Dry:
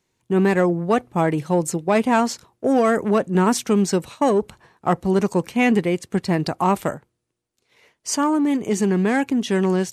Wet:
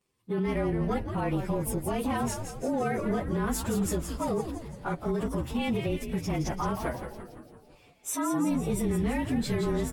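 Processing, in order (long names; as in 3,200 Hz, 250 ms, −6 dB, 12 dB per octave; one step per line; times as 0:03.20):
partials spread apart or drawn together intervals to 108%
brickwall limiter −19.5 dBFS, peak gain reduction 11.5 dB
echo with shifted repeats 169 ms, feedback 59%, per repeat −130 Hz, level −7.5 dB
level −2.5 dB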